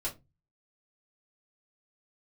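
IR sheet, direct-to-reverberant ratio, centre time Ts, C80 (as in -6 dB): -6.0 dB, 14 ms, 24.5 dB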